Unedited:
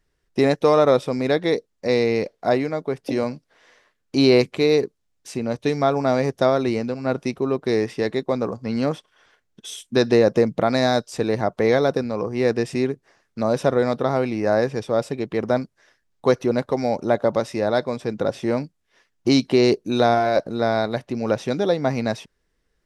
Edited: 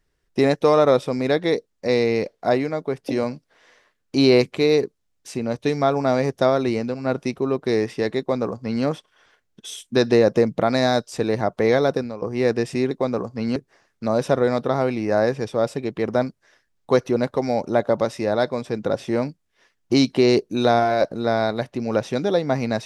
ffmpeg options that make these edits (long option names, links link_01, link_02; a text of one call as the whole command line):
ffmpeg -i in.wav -filter_complex "[0:a]asplit=4[link_01][link_02][link_03][link_04];[link_01]atrim=end=12.22,asetpts=PTS-STARTPTS,afade=type=out:start_time=11.88:duration=0.34:curve=qsin:silence=0.177828[link_05];[link_02]atrim=start=12.22:end=12.912,asetpts=PTS-STARTPTS,afade=type=in:duration=0.004:curve=hsin:silence=0.177828[link_06];[link_03]atrim=start=8.188:end=8.842[link_07];[link_04]atrim=start=12.908[link_08];[link_05][link_06]concat=n=2:v=0:a=1[link_09];[link_09][link_07]acrossfade=duration=0.004:curve1=hsin:curve2=hsin[link_10];[link_10][link_08]acrossfade=duration=0.004:curve1=hsin:curve2=hsin" out.wav